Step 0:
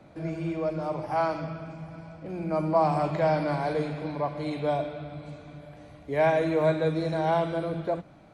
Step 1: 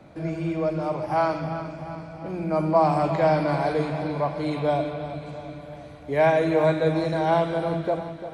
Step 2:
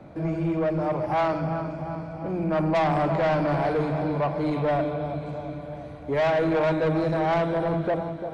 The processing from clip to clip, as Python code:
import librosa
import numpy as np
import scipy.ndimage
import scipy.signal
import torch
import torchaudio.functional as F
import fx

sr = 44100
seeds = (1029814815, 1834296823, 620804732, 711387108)

y1 = fx.echo_feedback(x, sr, ms=346, feedback_pct=58, wet_db=-12.0)
y1 = y1 * 10.0 ** (3.5 / 20.0)
y2 = fx.high_shelf(y1, sr, hz=2200.0, db=-10.0)
y2 = 10.0 ** (-23.0 / 20.0) * np.tanh(y2 / 10.0 ** (-23.0 / 20.0))
y2 = y2 * 10.0 ** (4.0 / 20.0)